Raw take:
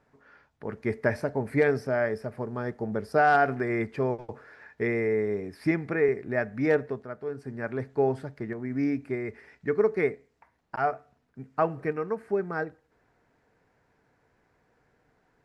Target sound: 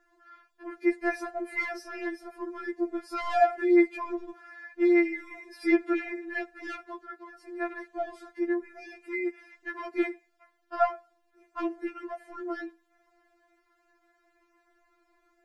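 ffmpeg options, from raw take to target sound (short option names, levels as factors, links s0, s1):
-filter_complex "[0:a]asplit=2[s0][s1];[s1]asoftclip=type=tanh:threshold=0.0596,volume=0.501[s2];[s0][s2]amix=inputs=2:normalize=0,afftfilt=real='re*4*eq(mod(b,16),0)':imag='im*4*eq(mod(b,16),0)':win_size=2048:overlap=0.75"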